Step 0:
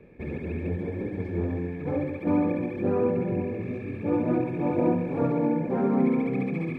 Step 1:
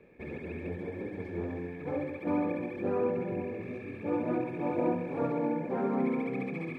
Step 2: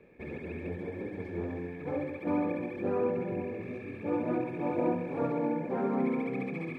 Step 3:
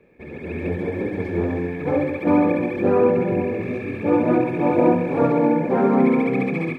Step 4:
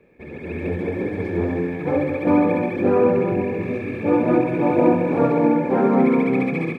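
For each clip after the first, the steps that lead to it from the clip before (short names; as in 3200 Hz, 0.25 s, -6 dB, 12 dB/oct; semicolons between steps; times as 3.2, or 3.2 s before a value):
low shelf 270 Hz -10 dB; gain -2 dB
nothing audible
AGC gain up to 11 dB; gain +2 dB
echo 0.222 s -10 dB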